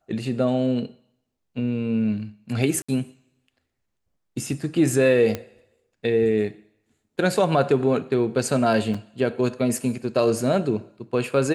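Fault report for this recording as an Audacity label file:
2.820000	2.880000	dropout 65 ms
5.350000	5.350000	pop -13 dBFS
8.940000	8.940000	dropout 4.9 ms

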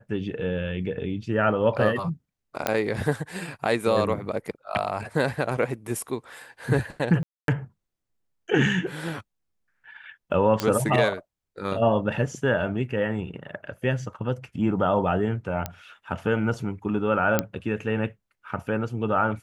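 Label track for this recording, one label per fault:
2.670000	2.670000	pop -8 dBFS
7.230000	7.480000	dropout 252 ms
10.600000	10.600000	pop -10 dBFS
15.660000	15.660000	pop -13 dBFS
17.390000	17.390000	pop -6 dBFS

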